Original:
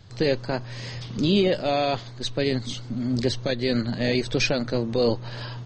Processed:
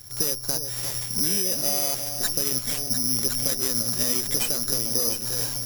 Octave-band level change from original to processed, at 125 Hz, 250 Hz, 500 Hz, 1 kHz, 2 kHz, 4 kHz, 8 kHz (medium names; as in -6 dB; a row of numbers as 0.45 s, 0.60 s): -8.0 dB, -9.5 dB, -10.5 dB, -8.0 dB, -7.0 dB, +3.0 dB, +18.5 dB